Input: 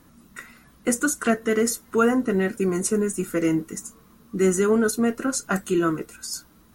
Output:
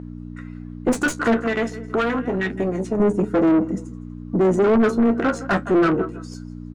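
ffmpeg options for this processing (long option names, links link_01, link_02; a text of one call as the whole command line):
ffmpeg -i in.wav -filter_complex "[0:a]afwtdn=0.0316,bass=frequency=250:gain=6,treble=frequency=4000:gain=7,aecho=1:1:163|326:0.106|0.0318,adynamicsmooth=sensitivity=4.5:basefreq=5000,flanger=delay=9.5:depth=3.8:regen=47:speed=0.3:shape=sinusoidal,aeval=exprs='(tanh(8.91*val(0)+0.75)-tanh(0.75))/8.91':channel_layout=same,asettb=1/sr,asplit=3[link_01][link_02][link_03];[link_01]atrim=end=1.424[link_04];[link_02]atrim=start=1.42:end=3,asetpts=PTS-STARTPTS,afade=type=in:duration=0.004:curve=qsin,afade=type=out:start_time=1.576:duration=0.004:curve=qsin,acrossover=split=1600|5100[link_05][link_06][link_07];[link_05]acompressor=threshold=-37dB:ratio=4[link_08];[link_06]acompressor=threshold=-42dB:ratio=4[link_09];[link_07]acompressor=threshold=-60dB:ratio=4[link_10];[link_08][link_09][link_10]amix=inputs=3:normalize=0[link_11];[link_03]atrim=start=2.996[link_12];[link_04][link_11]acrossfade=duration=0.004:curve1=hsin:curve2=qsin[link_13];[link_13][link_12]acrossfade=duration=0.004:curve1=qsin:curve2=hsin,aeval=exprs='val(0)+0.00708*(sin(2*PI*60*n/s)+sin(2*PI*2*60*n/s)/2+sin(2*PI*3*60*n/s)/3+sin(2*PI*4*60*n/s)/4+sin(2*PI*5*60*n/s)/5)':channel_layout=same,asplit=2[link_14][link_15];[link_15]highpass=frequency=720:poles=1,volume=32dB,asoftclip=type=tanh:threshold=-7dB[link_16];[link_14][link_16]amix=inputs=2:normalize=0,lowpass=frequency=1200:poles=1,volume=-6dB" out.wav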